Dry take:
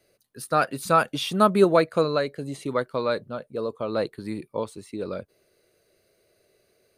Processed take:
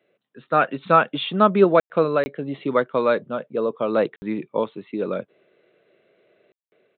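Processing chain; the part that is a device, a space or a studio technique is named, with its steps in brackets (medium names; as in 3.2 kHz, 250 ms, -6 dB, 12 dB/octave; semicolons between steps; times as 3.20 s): call with lost packets (high-pass 150 Hz 24 dB/octave; resampled via 8 kHz; level rider gain up to 6 dB; lost packets bursts)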